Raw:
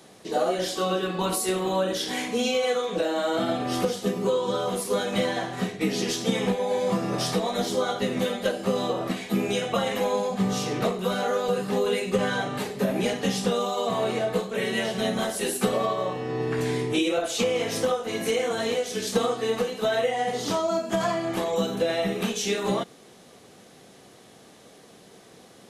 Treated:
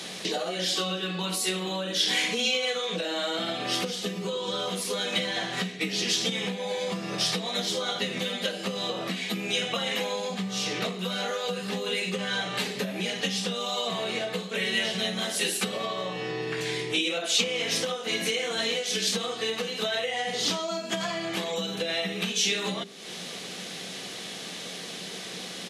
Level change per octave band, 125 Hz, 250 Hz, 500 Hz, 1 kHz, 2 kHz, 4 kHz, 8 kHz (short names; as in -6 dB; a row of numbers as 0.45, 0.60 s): -5.0, -6.0, -7.0, -6.0, +2.0, +5.5, +2.0 dB